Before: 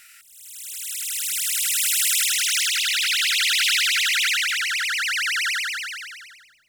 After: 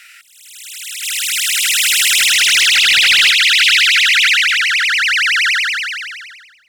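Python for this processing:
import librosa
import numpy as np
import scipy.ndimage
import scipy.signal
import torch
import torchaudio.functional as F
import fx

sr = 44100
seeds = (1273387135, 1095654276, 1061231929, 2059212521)

y = fx.peak_eq(x, sr, hz=2300.0, db=13.5, octaves=3.0)
y = fx.leveller(y, sr, passes=1, at=(1.03, 3.31))
y = y * 10.0 ** (-2.5 / 20.0)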